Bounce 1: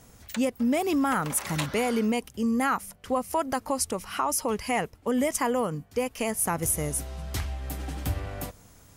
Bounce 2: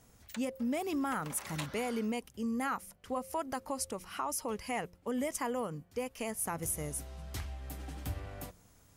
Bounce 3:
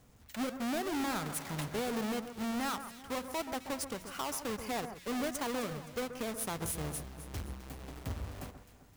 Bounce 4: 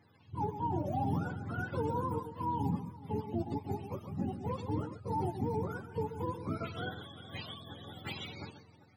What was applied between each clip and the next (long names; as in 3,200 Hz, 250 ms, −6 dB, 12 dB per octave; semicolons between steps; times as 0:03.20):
hum removal 176.9 Hz, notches 3; level −9 dB
each half-wave held at its own peak; delay that swaps between a low-pass and a high-pass 130 ms, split 1,800 Hz, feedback 64%, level −9.5 dB; level −5 dB
frequency axis turned over on the octave scale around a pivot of 470 Hz; one half of a high-frequency compander decoder only; level +2.5 dB